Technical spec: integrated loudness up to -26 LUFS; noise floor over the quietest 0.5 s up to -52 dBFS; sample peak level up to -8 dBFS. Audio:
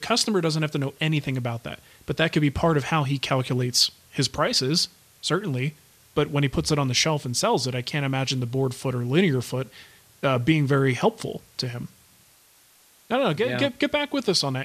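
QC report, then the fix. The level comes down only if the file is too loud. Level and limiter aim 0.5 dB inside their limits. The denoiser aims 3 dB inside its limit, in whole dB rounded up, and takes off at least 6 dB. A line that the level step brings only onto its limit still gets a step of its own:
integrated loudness -24.0 LUFS: fail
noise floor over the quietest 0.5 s -57 dBFS: pass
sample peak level -7.0 dBFS: fail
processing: trim -2.5 dB

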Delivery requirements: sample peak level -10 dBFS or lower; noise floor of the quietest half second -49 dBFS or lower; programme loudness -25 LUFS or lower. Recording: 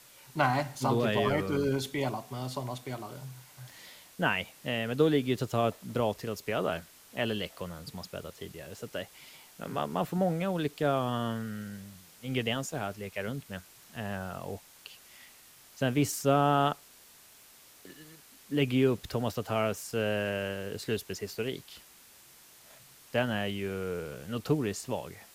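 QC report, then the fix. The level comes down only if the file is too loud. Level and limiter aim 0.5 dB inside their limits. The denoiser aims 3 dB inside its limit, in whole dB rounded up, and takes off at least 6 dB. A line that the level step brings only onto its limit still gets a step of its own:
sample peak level -12.0 dBFS: pass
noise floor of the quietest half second -56 dBFS: pass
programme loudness -31.5 LUFS: pass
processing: none needed

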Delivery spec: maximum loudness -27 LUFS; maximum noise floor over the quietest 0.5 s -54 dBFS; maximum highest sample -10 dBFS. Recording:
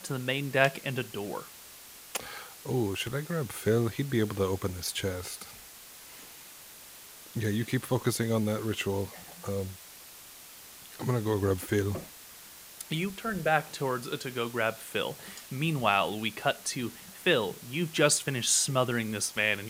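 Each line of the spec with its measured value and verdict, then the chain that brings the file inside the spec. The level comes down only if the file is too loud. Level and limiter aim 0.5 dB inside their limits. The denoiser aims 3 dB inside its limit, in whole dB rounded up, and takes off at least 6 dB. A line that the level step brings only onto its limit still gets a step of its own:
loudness -30.0 LUFS: pass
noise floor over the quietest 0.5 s -49 dBFS: fail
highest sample -7.0 dBFS: fail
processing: noise reduction 8 dB, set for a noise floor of -49 dBFS; peak limiter -10.5 dBFS

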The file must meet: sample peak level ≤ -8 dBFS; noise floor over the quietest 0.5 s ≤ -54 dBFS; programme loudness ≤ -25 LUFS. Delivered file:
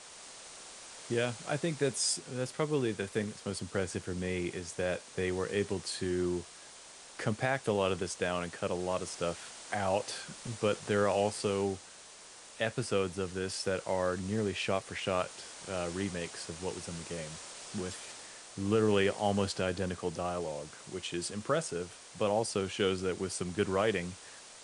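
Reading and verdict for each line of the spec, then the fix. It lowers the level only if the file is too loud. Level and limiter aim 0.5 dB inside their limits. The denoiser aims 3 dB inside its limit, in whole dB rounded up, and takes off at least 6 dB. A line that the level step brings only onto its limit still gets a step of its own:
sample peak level -16.0 dBFS: pass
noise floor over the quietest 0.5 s -52 dBFS: fail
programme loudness -34.0 LUFS: pass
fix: noise reduction 6 dB, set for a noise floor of -52 dBFS

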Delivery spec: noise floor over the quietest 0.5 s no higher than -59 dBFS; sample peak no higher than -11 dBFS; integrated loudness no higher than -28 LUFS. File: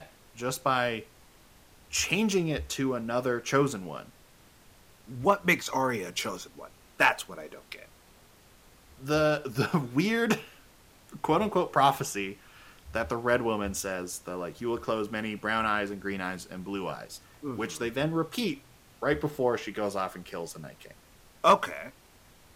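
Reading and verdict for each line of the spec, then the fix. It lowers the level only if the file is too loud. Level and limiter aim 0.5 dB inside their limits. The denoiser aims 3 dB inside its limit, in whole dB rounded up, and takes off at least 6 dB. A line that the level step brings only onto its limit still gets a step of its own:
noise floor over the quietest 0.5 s -57 dBFS: fail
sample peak -9.0 dBFS: fail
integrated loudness -29.0 LUFS: pass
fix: noise reduction 6 dB, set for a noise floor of -57 dBFS; peak limiter -11.5 dBFS

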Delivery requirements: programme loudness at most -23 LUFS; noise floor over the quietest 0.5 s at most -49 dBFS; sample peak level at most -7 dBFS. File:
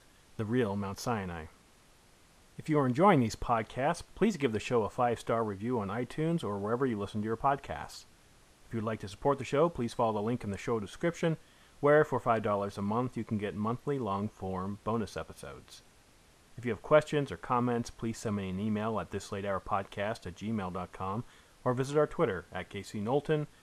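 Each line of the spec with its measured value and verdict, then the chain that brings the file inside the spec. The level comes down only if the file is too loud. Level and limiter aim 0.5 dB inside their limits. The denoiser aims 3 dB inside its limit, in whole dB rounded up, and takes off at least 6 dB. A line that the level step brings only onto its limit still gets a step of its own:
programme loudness -32.5 LUFS: pass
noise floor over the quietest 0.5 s -61 dBFS: pass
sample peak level -10.0 dBFS: pass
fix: none needed

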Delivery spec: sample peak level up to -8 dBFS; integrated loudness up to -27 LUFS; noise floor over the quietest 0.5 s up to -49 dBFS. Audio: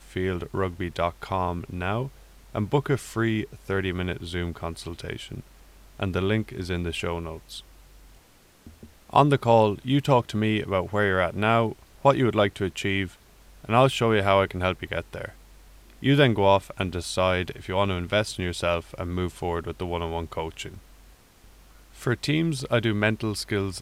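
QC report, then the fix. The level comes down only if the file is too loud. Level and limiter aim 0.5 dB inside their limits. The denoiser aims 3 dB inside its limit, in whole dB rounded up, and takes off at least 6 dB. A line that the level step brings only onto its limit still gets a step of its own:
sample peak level -3.5 dBFS: fail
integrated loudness -25.5 LUFS: fail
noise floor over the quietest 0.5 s -56 dBFS: pass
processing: trim -2 dB; peak limiter -8.5 dBFS

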